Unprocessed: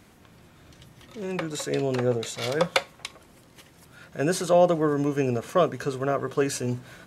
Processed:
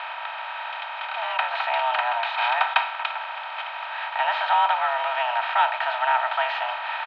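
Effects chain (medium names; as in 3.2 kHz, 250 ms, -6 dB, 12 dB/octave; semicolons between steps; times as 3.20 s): spectral levelling over time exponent 0.4; mistuned SSB +240 Hz 580–3100 Hz; comb 3.2 ms, depth 50%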